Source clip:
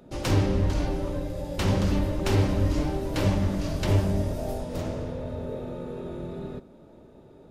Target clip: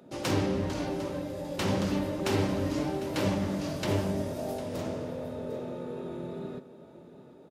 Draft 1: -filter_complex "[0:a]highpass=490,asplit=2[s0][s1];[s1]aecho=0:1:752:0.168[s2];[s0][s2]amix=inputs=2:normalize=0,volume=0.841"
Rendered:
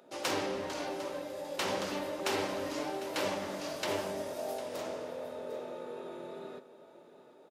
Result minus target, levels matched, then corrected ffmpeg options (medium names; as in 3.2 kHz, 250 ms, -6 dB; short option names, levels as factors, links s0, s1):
125 Hz band -13.5 dB
-filter_complex "[0:a]highpass=150,asplit=2[s0][s1];[s1]aecho=0:1:752:0.168[s2];[s0][s2]amix=inputs=2:normalize=0,volume=0.841"